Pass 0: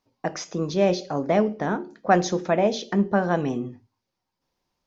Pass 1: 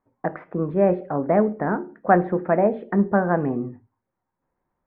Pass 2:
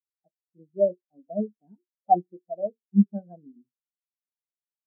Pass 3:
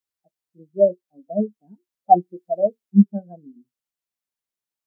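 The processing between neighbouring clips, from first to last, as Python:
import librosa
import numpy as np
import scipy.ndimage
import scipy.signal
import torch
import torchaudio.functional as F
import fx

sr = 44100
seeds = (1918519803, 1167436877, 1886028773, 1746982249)

y1 = scipy.signal.sosfilt(scipy.signal.butter(6, 1900.0, 'lowpass', fs=sr, output='sos'), x)
y1 = y1 * 10.0 ** (2.0 / 20.0)
y2 = fx.spectral_expand(y1, sr, expansion=4.0)
y2 = y2 * 10.0 ** (-5.5 / 20.0)
y3 = fx.rider(y2, sr, range_db=3, speed_s=0.5)
y3 = y3 * 10.0 ** (8.0 / 20.0)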